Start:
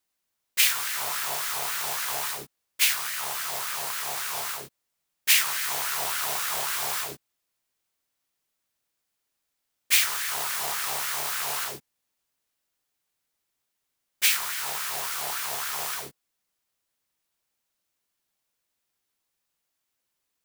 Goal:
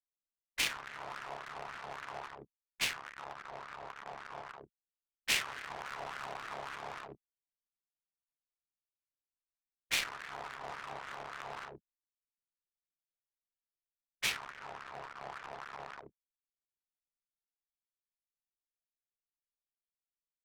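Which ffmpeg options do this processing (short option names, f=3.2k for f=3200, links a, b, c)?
-af "adynamicsmooth=sensitivity=3:basefreq=570,anlmdn=0.158,volume=-7.5dB"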